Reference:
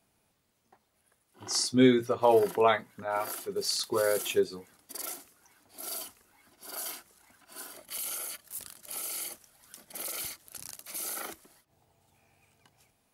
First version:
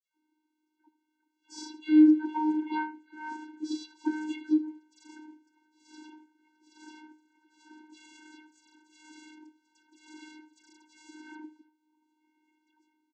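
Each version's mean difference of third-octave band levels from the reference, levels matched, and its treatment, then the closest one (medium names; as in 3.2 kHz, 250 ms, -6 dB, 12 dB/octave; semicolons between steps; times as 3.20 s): 17.0 dB: phase dispersion lows, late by 139 ms, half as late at 1.9 kHz; vocoder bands 16, square 308 Hz; on a send: delay 78 ms -16.5 dB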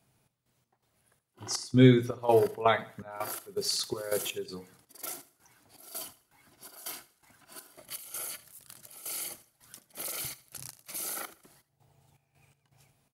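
4.0 dB: peaking EQ 130 Hz +12 dB 0.47 oct; trance gate "xxx..xx..x" 164 bpm -12 dB; feedback delay 78 ms, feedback 34%, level -18 dB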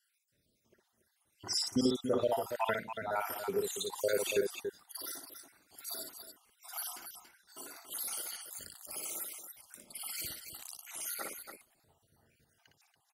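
7.0 dB: random holes in the spectrogram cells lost 68%; peak limiter -21 dBFS, peak gain reduction 9.5 dB; loudspeakers at several distances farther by 20 m -5 dB, 97 m -8 dB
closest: second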